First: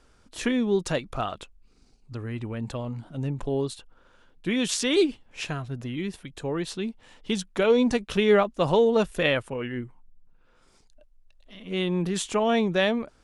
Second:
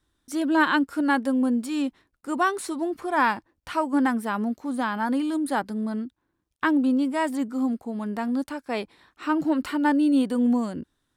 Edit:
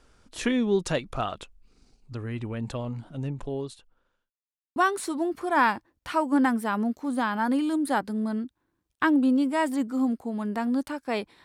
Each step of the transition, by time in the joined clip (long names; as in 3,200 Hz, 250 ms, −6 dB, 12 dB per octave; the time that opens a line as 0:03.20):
first
0:02.95–0:04.31: fade out linear
0:04.31–0:04.76: silence
0:04.76: continue with second from 0:02.37